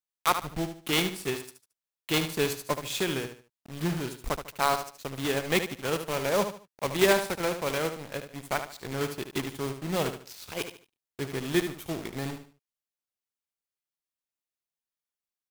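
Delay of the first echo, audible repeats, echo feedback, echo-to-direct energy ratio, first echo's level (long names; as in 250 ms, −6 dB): 74 ms, 3, 30%, −8.5 dB, −9.0 dB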